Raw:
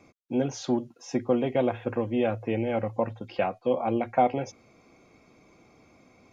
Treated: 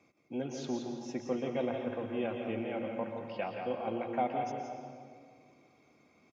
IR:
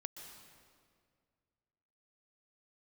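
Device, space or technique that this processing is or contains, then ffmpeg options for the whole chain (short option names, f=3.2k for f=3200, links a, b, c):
PA in a hall: -filter_complex "[0:a]highpass=100,equalizer=f=2.7k:t=o:w=1.5:g=3.5,aecho=1:1:172:0.447[a];[1:a]atrim=start_sample=2205[b];[a][b]afir=irnorm=-1:irlink=0,volume=-6dB"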